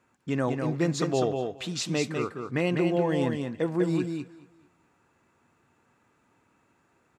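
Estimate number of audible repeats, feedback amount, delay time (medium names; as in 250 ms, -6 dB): 3, no regular repeats, 198 ms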